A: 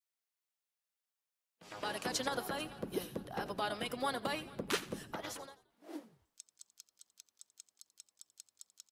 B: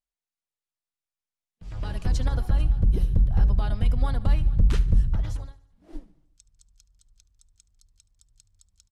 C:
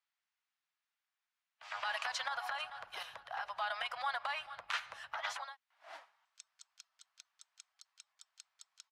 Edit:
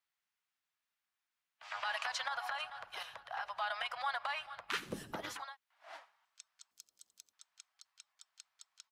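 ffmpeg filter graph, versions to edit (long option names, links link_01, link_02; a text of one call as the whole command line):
ffmpeg -i take0.wav -i take1.wav -i take2.wav -filter_complex "[0:a]asplit=2[link_01][link_02];[2:a]asplit=3[link_03][link_04][link_05];[link_03]atrim=end=4.92[link_06];[link_01]atrim=start=4.68:end=5.45[link_07];[link_04]atrim=start=5.21:end=6.712[link_08];[link_02]atrim=start=6.708:end=7.332[link_09];[link_05]atrim=start=7.328[link_10];[link_06][link_07]acrossfade=duration=0.24:curve1=tri:curve2=tri[link_11];[link_11][link_08]acrossfade=duration=0.24:curve1=tri:curve2=tri[link_12];[link_12][link_09]acrossfade=duration=0.004:curve1=hsin:curve2=hsin[link_13];[link_13][link_10]acrossfade=duration=0.004:curve1=hsin:curve2=hsin" out.wav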